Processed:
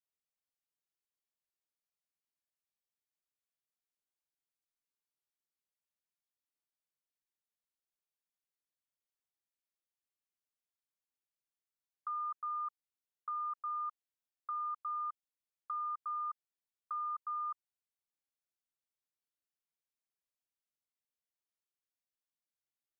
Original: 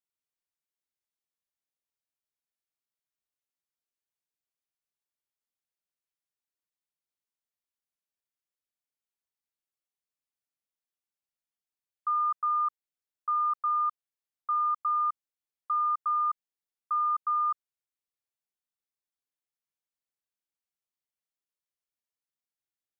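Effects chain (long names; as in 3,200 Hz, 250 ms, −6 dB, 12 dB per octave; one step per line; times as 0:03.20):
dynamic equaliser 1,200 Hz, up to −5 dB, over −39 dBFS, Q 4.3
level −6 dB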